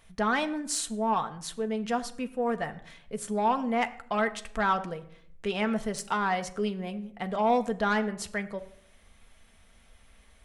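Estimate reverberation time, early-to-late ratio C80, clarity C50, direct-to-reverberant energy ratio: 0.65 s, 18.0 dB, 16.0 dB, 6.5 dB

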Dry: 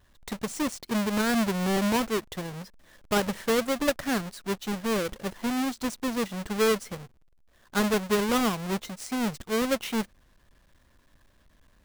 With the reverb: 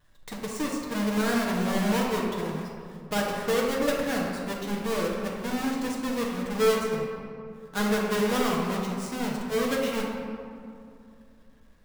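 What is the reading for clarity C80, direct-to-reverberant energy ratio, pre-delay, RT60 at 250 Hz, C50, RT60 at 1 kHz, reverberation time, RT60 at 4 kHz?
2.5 dB, −3.0 dB, 6 ms, 2.9 s, 1.0 dB, 2.4 s, 2.5 s, 1.2 s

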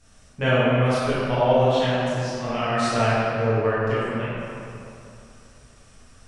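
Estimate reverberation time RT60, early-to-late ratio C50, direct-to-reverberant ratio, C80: 2.7 s, −4.5 dB, −11.0 dB, −2.0 dB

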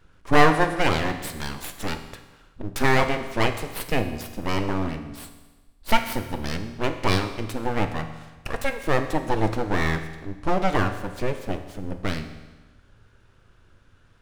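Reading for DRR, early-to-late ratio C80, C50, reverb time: 7.5 dB, 11.0 dB, 9.5 dB, 1.2 s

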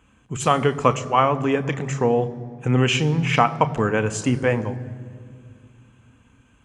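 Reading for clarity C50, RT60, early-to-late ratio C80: 16.5 dB, 2.3 s, 17.5 dB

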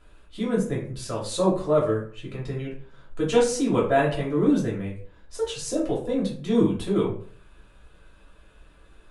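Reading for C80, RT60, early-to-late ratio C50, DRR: 11.0 dB, 0.50 s, 7.0 dB, −5.5 dB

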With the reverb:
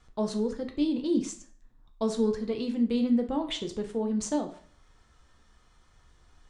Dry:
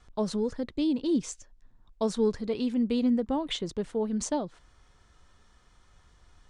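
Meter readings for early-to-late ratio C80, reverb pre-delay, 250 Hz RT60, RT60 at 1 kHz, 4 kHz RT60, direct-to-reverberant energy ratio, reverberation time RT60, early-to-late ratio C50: 15.5 dB, 5 ms, 0.50 s, 0.50 s, 0.40 s, 4.5 dB, 0.50 s, 11.0 dB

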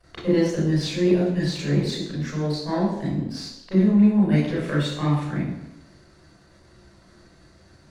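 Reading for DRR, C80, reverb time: −7.5 dB, 5.5 dB, 0.80 s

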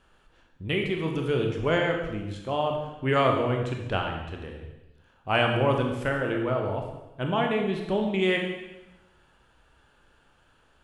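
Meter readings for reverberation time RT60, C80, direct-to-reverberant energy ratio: 1.0 s, 6.5 dB, 1.5 dB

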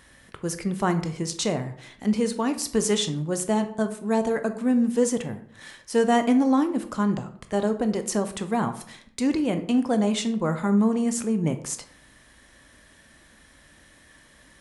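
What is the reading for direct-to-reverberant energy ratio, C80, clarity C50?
8.5 dB, 16.0 dB, 12.0 dB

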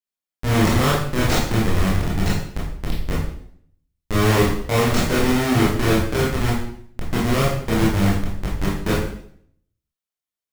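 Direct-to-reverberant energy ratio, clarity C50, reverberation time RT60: −5.5 dB, 2.5 dB, 0.65 s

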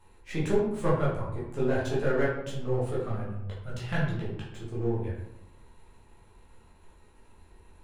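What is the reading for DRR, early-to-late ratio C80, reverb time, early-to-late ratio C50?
−7.5 dB, 6.0 dB, 0.85 s, 2.5 dB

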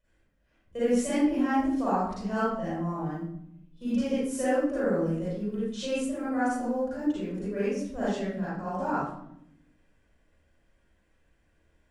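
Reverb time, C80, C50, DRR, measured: 0.75 s, 0.5 dB, −6.0 dB, −11.5 dB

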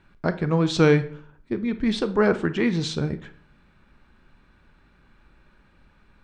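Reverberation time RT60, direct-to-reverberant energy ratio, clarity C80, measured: 0.55 s, 11.0 dB, 18.5 dB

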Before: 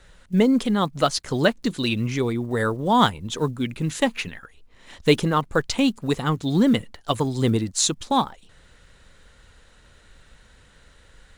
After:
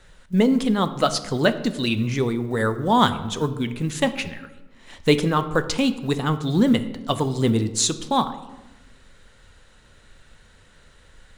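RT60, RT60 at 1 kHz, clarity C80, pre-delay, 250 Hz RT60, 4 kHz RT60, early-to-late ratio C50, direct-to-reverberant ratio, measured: 1.1 s, 0.95 s, 15.0 dB, 4 ms, 1.4 s, 0.70 s, 13.0 dB, 10.0 dB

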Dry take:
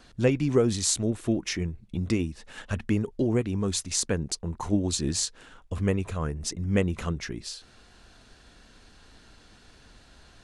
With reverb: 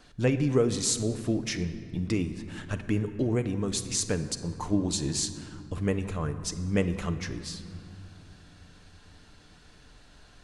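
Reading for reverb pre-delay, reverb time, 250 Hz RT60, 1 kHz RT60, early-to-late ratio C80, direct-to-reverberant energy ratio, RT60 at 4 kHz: 7 ms, 2.8 s, 4.0 s, 2.8 s, 12.0 dB, 7.5 dB, 1.5 s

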